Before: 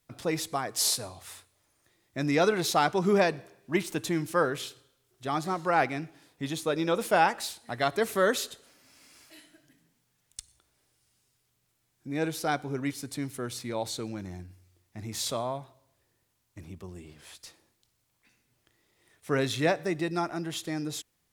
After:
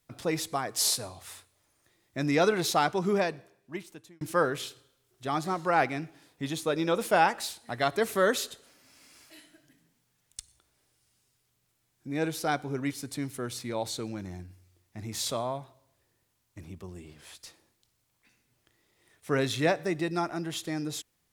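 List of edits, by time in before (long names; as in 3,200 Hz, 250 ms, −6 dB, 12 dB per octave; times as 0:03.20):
0:02.66–0:04.21: fade out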